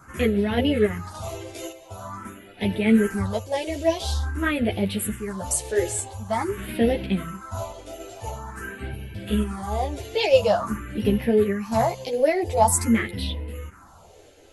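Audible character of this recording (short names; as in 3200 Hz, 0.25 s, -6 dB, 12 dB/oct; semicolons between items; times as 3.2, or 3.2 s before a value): phasing stages 4, 0.47 Hz, lowest notch 190–1200 Hz; random-step tremolo; a shimmering, thickened sound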